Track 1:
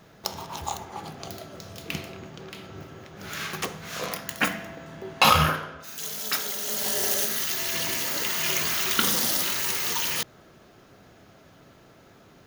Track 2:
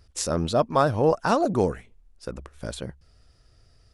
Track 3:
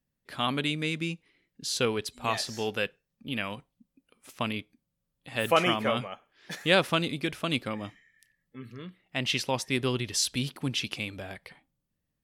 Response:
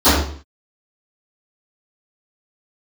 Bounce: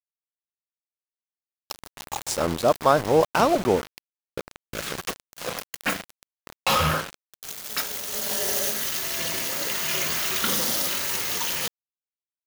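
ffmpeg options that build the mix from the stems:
-filter_complex "[0:a]adynamicequalizer=threshold=0.00282:dfrequency=540:dqfactor=5.7:tfrequency=540:tqfactor=5.7:attack=5:release=100:ratio=0.375:range=3:mode=boostabove:tftype=bell,asoftclip=type=tanh:threshold=-19dB,adelay=1450,volume=2dB[a];[1:a]bass=f=250:g=-6,treble=f=4k:g=-1,adelay=2100,volume=2.5dB[b];[a][b]amix=inputs=2:normalize=0,aeval=exprs='val(0)*gte(abs(val(0)),0.0473)':c=same"

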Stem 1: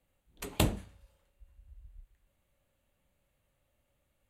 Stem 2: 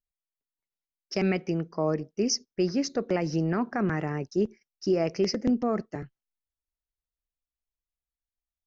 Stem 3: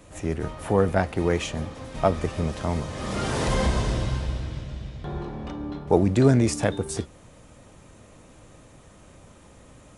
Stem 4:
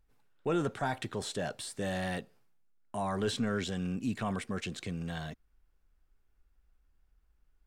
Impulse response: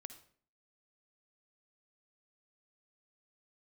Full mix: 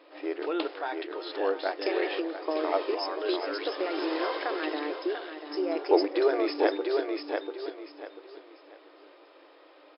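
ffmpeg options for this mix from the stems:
-filter_complex "[0:a]acrusher=bits=6:mix=0:aa=0.000001,volume=-4.5dB[a];[1:a]acompressor=threshold=-29dB:ratio=6,adelay=700,volume=3dB,asplit=2[b][c];[c]volume=-9.5dB[d];[2:a]volume=-2dB,asplit=2[e][f];[f]volume=-4.5dB[g];[3:a]volume=0dB,asplit=3[h][i][j];[i]volume=-13.5dB[k];[j]apad=whole_len=439804[l];[e][l]sidechaincompress=threshold=-58dB:ratio=8:attack=16:release=228[m];[d][g][k]amix=inputs=3:normalize=0,aecho=0:1:691|1382|2073|2764:1|0.28|0.0784|0.022[n];[a][b][m][h][n]amix=inputs=5:normalize=0,afftfilt=real='re*between(b*sr/4096,280,5300)':imag='im*between(b*sr/4096,280,5300)':win_size=4096:overlap=0.75"

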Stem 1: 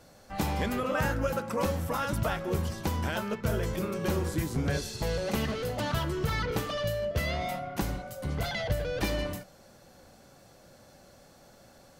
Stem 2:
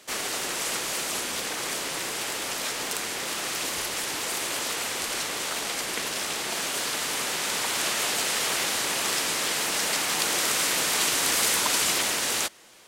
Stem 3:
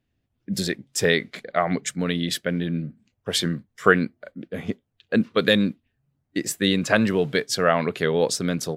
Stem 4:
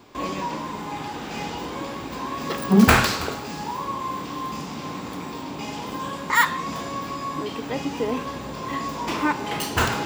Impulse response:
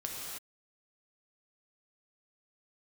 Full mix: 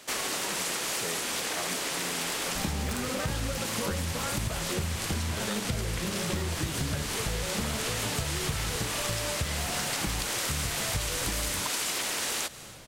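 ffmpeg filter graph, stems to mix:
-filter_complex "[0:a]lowshelf=f=270:g=11,adelay=2250,volume=-1dB[a];[1:a]volume=1dB,asplit=2[b][c];[c]volume=-19dB[d];[2:a]volume=-14.5dB,asplit=2[e][f];[3:a]volume=-14.5dB,asplit=2[g][h];[h]volume=-10dB[i];[f]apad=whole_len=443409[j];[g][j]sidechaincompress=threshold=-42dB:ratio=8:attack=16:release=1160[k];[4:a]atrim=start_sample=2205[l];[d][i]amix=inputs=2:normalize=0[m];[m][l]afir=irnorm=-1:irlink=0[n];[a][b][e][k][n]amix=inputs=5:normalize=0,acompressor=threshold=-28dB:ratio=6"

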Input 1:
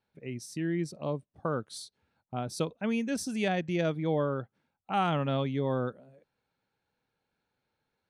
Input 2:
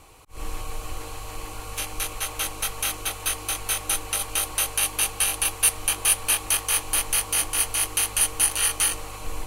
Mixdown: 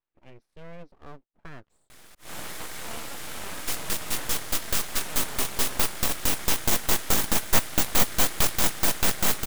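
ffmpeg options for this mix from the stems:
-filter_complex "[0:a]lowpass=f=3k:w=0.5412,lowpass=f=3k:w=1.3066,volume=-9dB[a];[1:a]highpass=180,acontrast=75,adelay=1900,volume=-3dB[b];[a][b]amix=inputs=2:normalize=0,aeval=exprs='abs(val(0))':c=same"

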